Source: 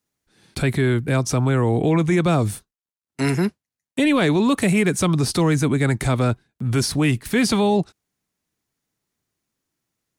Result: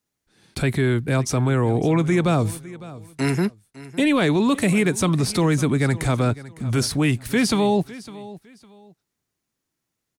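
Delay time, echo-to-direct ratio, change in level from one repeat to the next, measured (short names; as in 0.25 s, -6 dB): 0.556 s, -17.5 dB, -11.5 dB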